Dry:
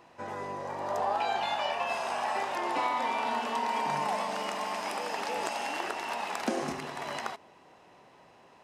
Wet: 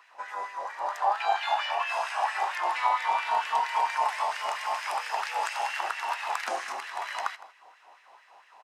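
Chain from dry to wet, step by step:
single-tap delay 161 ms −17.5 dB
auto-filter high-pass sine 4.4 Hz 740–1,900 Hz

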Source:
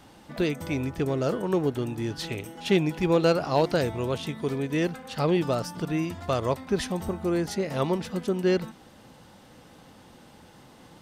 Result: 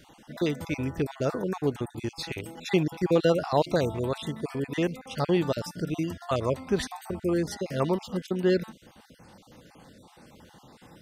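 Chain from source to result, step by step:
time-frequency cells dropped at random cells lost 34%

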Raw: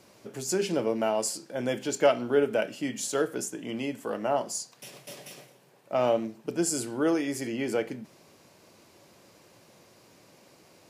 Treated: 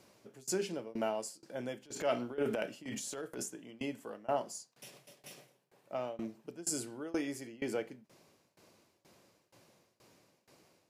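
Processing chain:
shaped tremolo saw down 2.1 Hz, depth 95%
0:01.82–0:03.46: transient designer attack −8 dB, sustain +8 dB
level −5 dB

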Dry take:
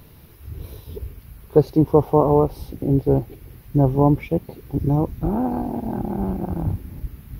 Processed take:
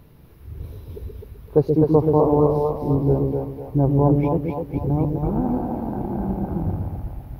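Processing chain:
high-shelf EQ 2,100 Hz −9 dB
on a send: echo with a time of its own for lows and highs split 490 Hz, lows 128 ms, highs 254 ms, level −3 dB
on the sum: level −2 dB

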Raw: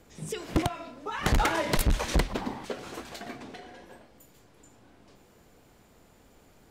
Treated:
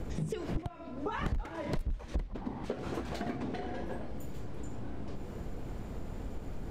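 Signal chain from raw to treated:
spectral tilt −3 dB per octave
downward compressor 8 to 1, threshold −44 dBFS, peak gain reduction 35.5 dB
level +11 dB

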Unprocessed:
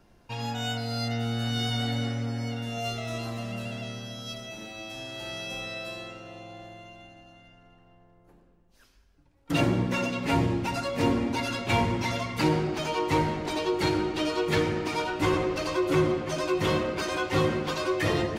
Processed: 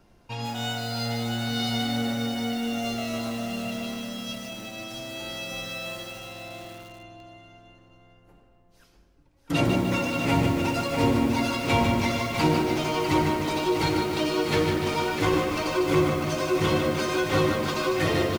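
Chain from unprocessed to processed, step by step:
notch filter 1,700 Hz, Q 16
single-tap delay 649 ms −7.5 dB
feedback echo at a low word length 150 ms, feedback 55%, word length 7 bits, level −5 dB
level +1 dB

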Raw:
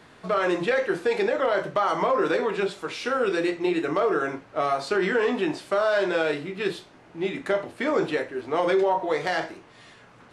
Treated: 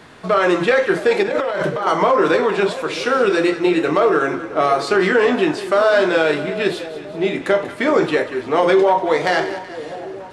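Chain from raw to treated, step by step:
0:01.23–0:01.87: compressor whose output falls as the input rises −29 dBFS, ratio −1
echo with a time of its own for lows and highs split 840 Hz, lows 663 ms, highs 188 ms, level −13 dB
level +8 dB

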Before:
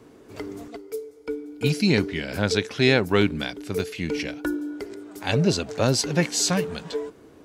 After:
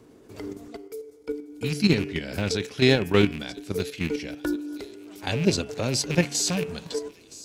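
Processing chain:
loose part that buzzes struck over −26 dBFS, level −18 dBFS
delay with a high-pass on its return 982 ms, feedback 61%, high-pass 4,200 Hz, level −14 dB
output level in coarse steps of 9 dB
parametric band 1,400 Hz −4 dB 2.7 octaves
hum removal 141.3 Hz, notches 24
level +3 dB

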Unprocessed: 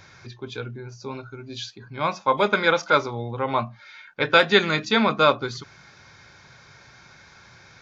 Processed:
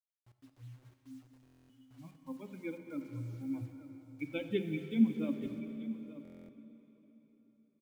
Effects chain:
spectral dynamics exaggerated over time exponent 3
formant resonators in series i
spectral tilt −2 dB per octave
mains-hum notches 50/100/150/200/250 Hz
bit reduction 11 bits
multi-tap delay 220/882 ms −17.5/−15 dB
dense smooth reverb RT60 4.2 s, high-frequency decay 0.85×, DRR 7 dB
buffer that repeats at 0:01.44/0:06.23, samples 1,024, times 10

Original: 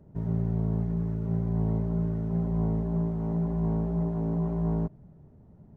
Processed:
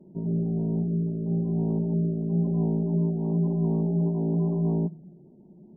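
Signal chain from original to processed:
parametric band 350 Hz +13.5 dB 0.25 octaves
tuned comb filter 180 Hz, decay 0.7 s, harmonics all, mix 50%
gate on every frequency bin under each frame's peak −30 dB strong
low shelf with overshoot 130 Hz −12 dB, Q 3
hum removal 160.1 Hz, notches 3
level +4.5 dB

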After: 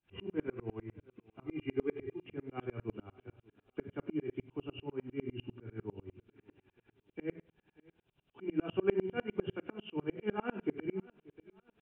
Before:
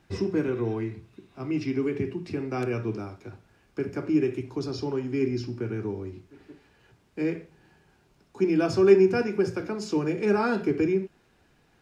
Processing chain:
hearing-aid frequency compression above 2,300 Hz 4 to 1
0:01.46–0:02.26: comb filter 2.5 ms, depth 83%
on a send: repeating echo 582 ms, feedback 38%, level −21.5 dB
on the sum: tremolo with a ramp in dB swelling 10 Hz, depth 33 dB
level −4 dB

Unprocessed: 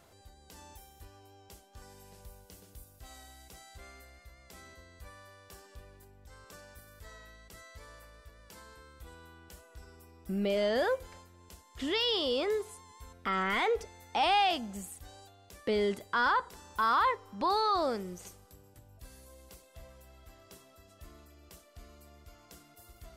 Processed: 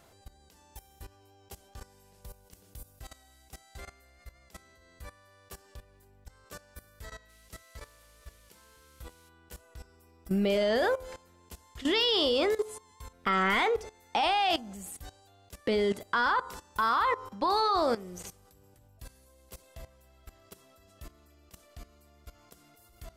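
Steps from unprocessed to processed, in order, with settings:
hum removal 86.02 Hz, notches 17
output level in coarse steps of 17 dB
0:07.28–0:09.28: noise in a band 2,000–13,000 Hz −73 dBFS
level +8 dB

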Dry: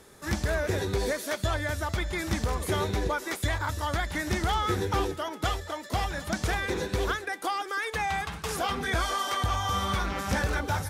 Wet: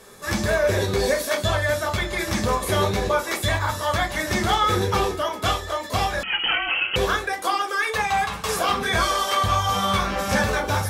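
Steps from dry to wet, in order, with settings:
low-shelf EQ 240 Hz −9 dB
convolution reverb RT60 0.25 s, pre-delay 7 ms, DRR 1 dB
0:06.23–0:06.96: voice inversion scrambler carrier 3,100 Hz
level +4.5 dB

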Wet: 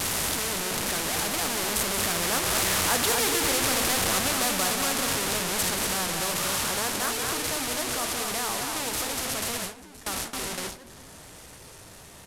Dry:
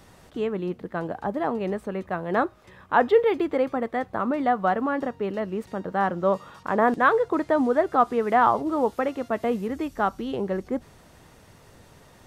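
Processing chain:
linear delta modulator 64 kbit/s, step −19 dBFS
source passing by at 0:03.60, 7 m/s, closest 6.7 metres
pitch vibrato 1.6 Hz 32 cents
in parallel at −3 dB: downward compressor 6 to 1, threshold −35 dBFS, peak gain reduction 19.5 dB
on the sum: high-shelf EQ 6,800 Hz +9.5 dB
loudspeakers that aren't time-aligned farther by 62 metres −10 dB, 82 metres −7 dB
noise gate with hold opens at −24 dBFS
flanger 0.72 Hz, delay 9.9 ms, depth 8.8 ms, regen −54%
every bin compressed towards the loudest bin 2 to 1

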